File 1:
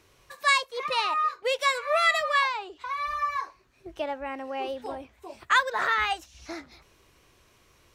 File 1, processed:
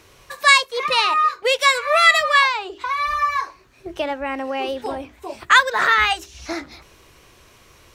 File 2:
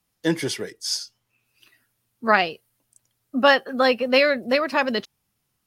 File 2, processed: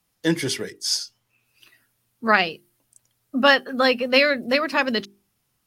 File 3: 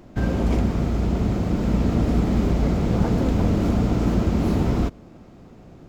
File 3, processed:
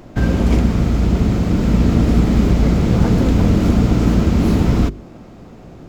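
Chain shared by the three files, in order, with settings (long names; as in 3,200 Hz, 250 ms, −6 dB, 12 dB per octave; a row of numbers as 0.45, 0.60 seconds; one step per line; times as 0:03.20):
mains-hum notches 50/100/150/200/250/300/350/400 Hz
dynamic equaliser 710 Hz, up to −5 dB, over −36 dBFS, Q 0.9
normalise the peak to −2 dBFS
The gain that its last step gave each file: +10.5, +2.5, +8.0 decibels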